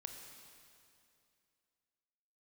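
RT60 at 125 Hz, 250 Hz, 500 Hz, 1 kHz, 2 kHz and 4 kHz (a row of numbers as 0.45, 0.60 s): 2.6, 2.7, 2.6, 2.5, 2.4, 2.4 s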